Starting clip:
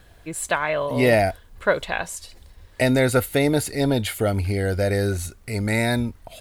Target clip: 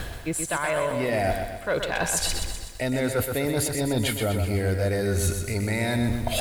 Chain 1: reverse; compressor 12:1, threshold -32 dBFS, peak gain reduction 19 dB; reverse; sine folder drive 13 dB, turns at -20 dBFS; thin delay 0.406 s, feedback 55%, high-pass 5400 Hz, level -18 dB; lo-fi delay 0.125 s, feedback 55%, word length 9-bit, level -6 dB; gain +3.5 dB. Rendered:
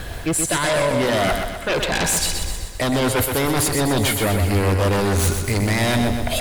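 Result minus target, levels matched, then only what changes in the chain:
compressor: peak gain reduction -10.5 dB
change: compressor 12:1, threshold -43.5 dBFS, peak gain reduction 30 dB

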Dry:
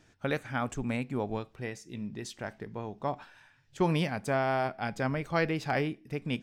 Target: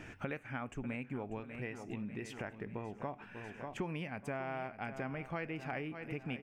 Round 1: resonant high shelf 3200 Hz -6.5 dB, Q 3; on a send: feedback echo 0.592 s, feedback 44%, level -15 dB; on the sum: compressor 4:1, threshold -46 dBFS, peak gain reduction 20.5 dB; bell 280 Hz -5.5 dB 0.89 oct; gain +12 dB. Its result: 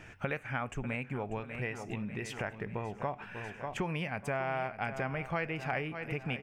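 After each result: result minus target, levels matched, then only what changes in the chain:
compressor: peak gain reduction -7 dB; 250 Hz band -3.5 dB
change: compressor 4:1, threshold -55.5 dBFS, peak gain reduction 27.5 dB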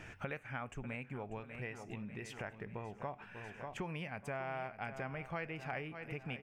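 250 Hz band -3.5 dB
change: bell 280 Hz +2 dB 0.89 oct

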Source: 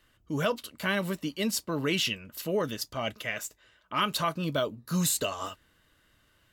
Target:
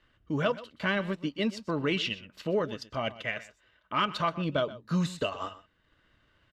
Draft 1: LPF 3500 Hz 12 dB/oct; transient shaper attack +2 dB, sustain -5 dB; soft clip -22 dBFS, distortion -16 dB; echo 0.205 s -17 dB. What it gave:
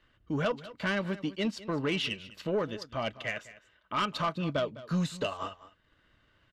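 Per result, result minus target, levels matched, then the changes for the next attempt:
echo 80 ms late; soft clip: distortion +15 dB
change: echo 0.125 s -17 dB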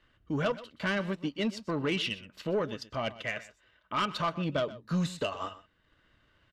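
soft clip: distortion +15 dB
change: soft clip -12 dBFS, distortion -31 dB

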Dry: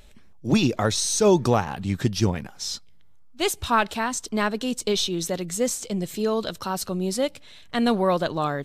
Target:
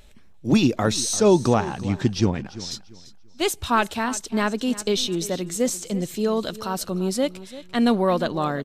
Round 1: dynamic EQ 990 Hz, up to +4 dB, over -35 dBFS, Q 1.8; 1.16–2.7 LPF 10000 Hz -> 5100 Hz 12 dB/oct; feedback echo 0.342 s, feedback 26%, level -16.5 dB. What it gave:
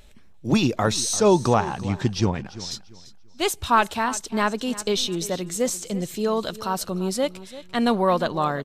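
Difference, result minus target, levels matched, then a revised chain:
1000 Hz band +3.5 dB
dynamic EQ 270 Hz, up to +4 dB, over -35 dBFS, Q 1.8; 1.16–2.7 LPF 10000 Hz -> 5100 Hz 12 dB/oct; feedback echo 0.342 s, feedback 26%, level -16.5 dB

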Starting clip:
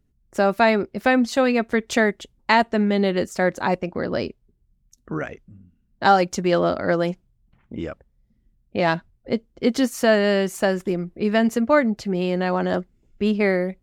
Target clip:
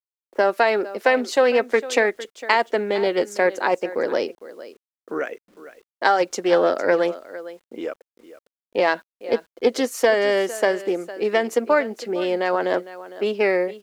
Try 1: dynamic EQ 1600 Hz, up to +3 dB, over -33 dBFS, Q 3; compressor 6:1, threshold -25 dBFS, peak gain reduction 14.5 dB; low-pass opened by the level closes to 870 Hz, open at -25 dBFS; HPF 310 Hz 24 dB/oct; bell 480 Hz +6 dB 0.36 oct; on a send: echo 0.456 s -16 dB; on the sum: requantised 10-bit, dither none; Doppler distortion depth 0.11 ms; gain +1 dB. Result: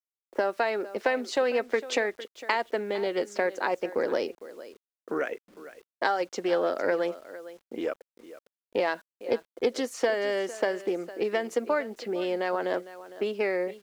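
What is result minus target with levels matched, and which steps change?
compressor: peak gain reduction +9 dB
change: compressor 6:1, threshold -14 dBFS, peak gain reduction 5.5 dB

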